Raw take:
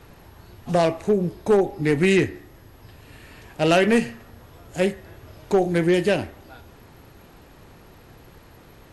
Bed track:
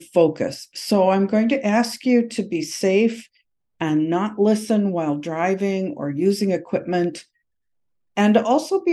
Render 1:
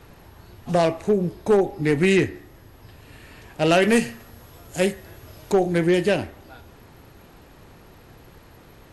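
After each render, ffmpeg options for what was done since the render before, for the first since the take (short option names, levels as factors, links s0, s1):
-filter_complex "[0:a]asettb=1/sr,asplit=3[s0][s1][s2];[s0]atrim=end=3.824[s3];[s1]atrim=start=3.82:end=5.52,asetpts=PTS-STARTPTS,afade=t=in:d=0.004:c=qsin,afade=t=out:st=1.696:d=0.004:c=qsin,highshelf=f=4800:g=9[s4];[s2]atrim=start=5.516[s5];[s3][s4]acrossfade=d=0.004:c1=hsin:c2=qsin[s6];[s6][s5]acrossfade=d=0.004:c1=qsin:c2=hsin"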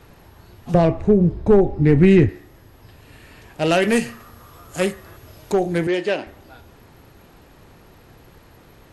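-filter_complex "[0:a]asettb=1/sr,asplit=3[s0][s1][s2];[s0]atrim=end=0.744[s3];[s1]atrim=start=0.74:end=2.29,asetpts=PTS-STARTPTS,afade=t=in:d=0.004:c=qsin,afade=t=out:st=1.546:d=0.004:c=qsin,aemphasis=mode=reproduction:type=riaa[s4];[s2]atrim=start=2.286[s5];[s3][s4]acrossfade=d=0.004:c1=hsin:c2=qsin[s6];[s6][s5]acrossfade=d=0.004:c1=qsin:c2=hsin,asettb=1/sr,asplit=3[s7][s8][s9];[s7]atrim=end=4.064[s10];[s8]atrim=start=4.06:end=5.17,asetpts=PTS-STARTPTS,afade=t=in:d=0.004:c=qsin,afade=t=out:st=1.106:d=0.004:c=qsin,equalizer=f=1200:w=4.6:g=13[s11];[s9]atrim=start=5.166[s12];[s10][s11]acrossfade=d=0.004:c1=hsin:c2=qsin[s13];[s13][s12]acrossfade=d=0.004:c1=qsin:c2=hsin,asettb=1/sr,asplit=3[s14][s15][s16];[s14]atrim=end=5.874[s17];[s15]atrim=start=5.87:end=6.27,asetpts=PTS-STARTPTS,afade=t=in:d=0.004:c=qsin,afade=t=out:st=0.396:d=0.004:c=qsin,highpass=320,lowpass=5400[s18];[s16]atrim=start=6.266[s19];[s17][s18]acrossfade=d=0.004:c1=hsin:c2=qsin[s20];[s20][s19]acrossfade=d=0.004:c1=qsin:c2=hsin"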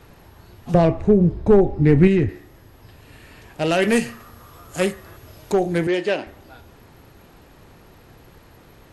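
-filter_complex "[0:a]asettb=1/sr,asplit=3[s0][s1][s2];[s0]atrim=end=2.074[s3];[s1]atrim=start=2.07:end=3.79,asetpts=PTS-STARTPTS,afade=t=in:d=0.004:c=qsin,afade=t=out:st=1.716:d=0.004:c=qsin,acompressor=threshold=0.141:ratio=2:attack=3.2:release=140:knee=1:detection=peak[s4];[s2]atrim=start=3.786[s5];[s3][s4]acrossfade=d=0.004:c1=hsin:c2=qsin[s6];[s6][s5]acrossfade=d=0.004:c1=qsin:c2=hsin"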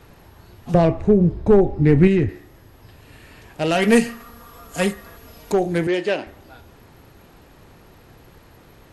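-filter_complex "[0:a]asettb=1/sr,asplit=3[s0][s1][s2];[s0]atrim=end=3.754[s3];[s1]atrim=start=3.75:end=5.52,asetpts=PTS-STARTPTS,afade=t=in:d=0.004:c=qsin,afade=t=out:st=1.766:d=0.004:c=qsin,aecho=1:1:4.3:0.65,atrim=end_sample=78057[s4];[s2]atrim=start=5.516[s5];[s3][s4]acrossfade=d=0.004:c1=hsin:c2=qsin[s6];[s6][s5]acrossfade=d=0.004:c1=qsin:c2=hsin"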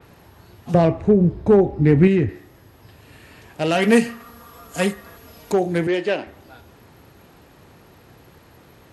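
-af "highpass=66,adynamicequalizer=threshold=0.01:dfrequency=4200:dqfactor=0.7:tfrequency=4200:tqfactor=0.7:attack=5:release=100:ratio=0.375:range=2.5:mode=cutabove:tftype=highshelf"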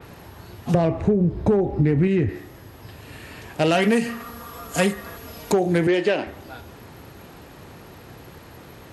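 -filter_complex "[0:a]asplit=2[s0][s1];[s1]alimiter=limit=0.224:level=0:latency=1,volume=0.944[s2];[s0][s2]amix=inputs=2:normalize=0,acompressor=threshold=0.178:ratio=12"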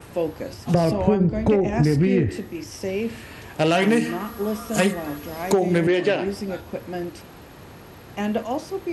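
-filter_complex "[1:a]volume=0.355[s0];[0:a][s0]amix=inputs=2:normalize=0"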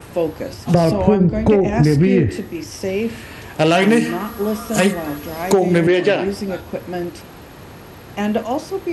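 -af "volume=1.78,alimiter=limit=0.891:level=0:latency=1"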